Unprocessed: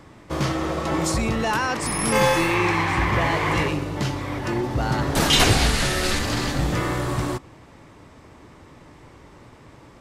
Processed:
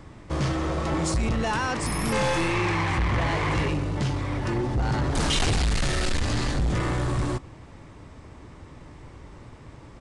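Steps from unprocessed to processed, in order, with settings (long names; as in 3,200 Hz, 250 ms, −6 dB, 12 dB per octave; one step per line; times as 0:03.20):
low-shelf EQ 110 Hz +11 dB
soft clipping −18.5 dBFS, distortion −8 dB
downsampling to 22,050 Hz
level −1.5 dB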